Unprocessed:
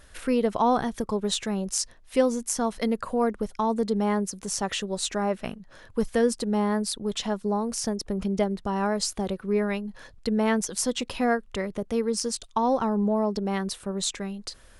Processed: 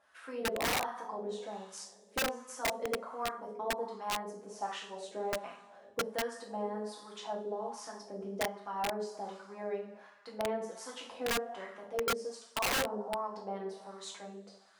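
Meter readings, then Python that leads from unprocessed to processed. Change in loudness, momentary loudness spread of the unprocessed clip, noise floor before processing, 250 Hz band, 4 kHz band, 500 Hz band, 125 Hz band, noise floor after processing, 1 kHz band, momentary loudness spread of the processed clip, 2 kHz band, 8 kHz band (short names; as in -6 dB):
-10.5 dB, 6 LU, -52 dBFS, -19.0 dB, -7.0 dB, -10.0 dB, -17.0 dB, -59 dBFS, -8.0 dB, 12 LU, -3.0 dB, -12.0 dB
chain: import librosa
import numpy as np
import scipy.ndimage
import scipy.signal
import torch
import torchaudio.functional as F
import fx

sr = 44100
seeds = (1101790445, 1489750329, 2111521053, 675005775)

y = fx.highpass(x, sr, hz=140.0, slope=6)
y = fx.high_shelf(y, sr, hz=3800.0, db=11.0)
y = fx.rev_double_slope(y, sr, seeds[0], early_s=0.49, late_s=2.3, knee_db=-17, drr_db=-3.5)
y = fx.wah_lfo(y, sr, hz=1.3, low_hz=460.0, high_hz=1200.0, q=2.2)
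y = (np.mod(10.0 ** (18.0 / 20.0) * y + 1.0, 2.0) - 1.0) / 10.0 ** (18.0 / 20.0)
y = y * 10.0 ** (-8.0 / 20.0)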